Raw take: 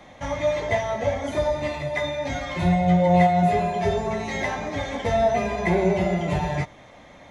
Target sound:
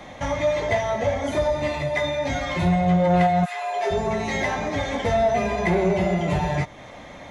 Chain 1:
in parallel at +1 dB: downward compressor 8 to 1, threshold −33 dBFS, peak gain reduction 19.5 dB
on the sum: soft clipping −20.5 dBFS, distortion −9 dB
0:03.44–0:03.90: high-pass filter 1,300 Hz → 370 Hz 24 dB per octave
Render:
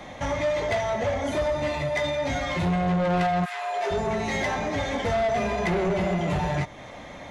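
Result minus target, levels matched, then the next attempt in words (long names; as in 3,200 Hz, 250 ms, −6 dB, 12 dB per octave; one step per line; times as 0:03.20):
soft clipping: distortion +9 dB
in parallel at +1 dB: downward compressor 8 to 1, threshold −33 dBFS, peak gain reduction 19.5 dB
on the sum: soft clipping −11.5 dBFS, distortion −19 dB
0:03.44–0:03.90: high-pass filter 1,300 Hz → 370 Hz 24 dB per octave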